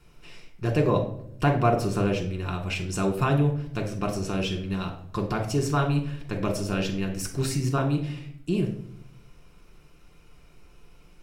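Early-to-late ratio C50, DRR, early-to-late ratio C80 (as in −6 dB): 9.0 dB, 1.5 dB, 12.5 dB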